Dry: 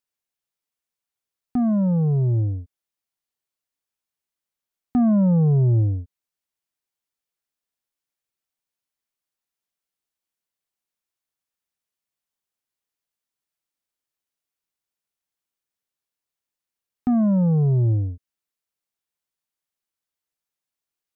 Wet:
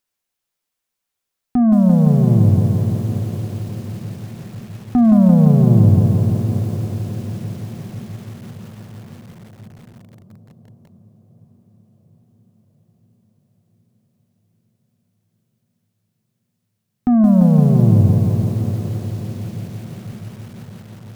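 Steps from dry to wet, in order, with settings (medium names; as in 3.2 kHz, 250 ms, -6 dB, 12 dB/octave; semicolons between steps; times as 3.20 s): peaking EQ 86 Hz +3.5 dB 0.72 oct; in parallel at +2 dB: peak limiter -20.5 dBFS, peak gain reduction 8 dB; on the sum: echo that smears into a reverb 592 ms, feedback 69%, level -13 dB; on a send at -15 dB: reverberation RT60 0.30 s, pre-delay 3 ms; on the sum: bit-crushed delay 171 ms, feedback 80%, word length 7-bit, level -5 dB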